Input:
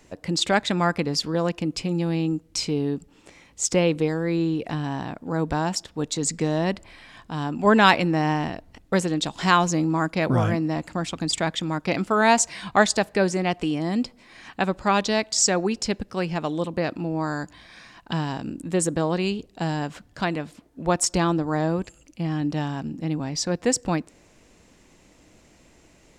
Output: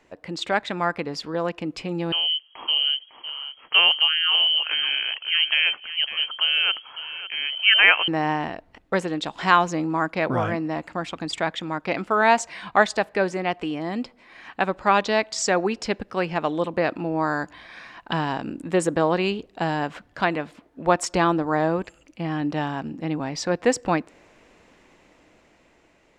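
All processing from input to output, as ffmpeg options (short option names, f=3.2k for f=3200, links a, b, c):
-filter_complex "[0:a]asettb=1/sr,asplit=3[a][b][c];[a]atrim=end=2.124[d];[b]atrim=start=2.12:end=8.08,asetpts=PTS-STARTPTS,afade=t=in:d=0.004:c=qsin,afade=t=out:st=5.956:d=0.004:c=qsin,asoftclip=type=hard:threshold=-4.5dB,aecho=1:1:554:0.251,atrim=end_sample=262836,lowpass=f=2.8k:t=q:w=0.5098,lowpass=f=2.8k:t=q:w=0.6013,lowpass=f=2.8k:t=q:w=0.9,lowpass=f=2.8k:t=q:w=2.563,afreqshift=-3300[e];[c]atrim=start=8.076[f];[d][e]acrossfade=d=0.004:c1=hsin:c2=qsin[g];[g][f]acrossfade=d=0.004:c1=qsin:c2=hsin,bass=f=250:g=-4,treble=f=4k:g=-14,dynaudnorm=f=690:g=5:m=7dB,lowshelf=f=360:g=-7"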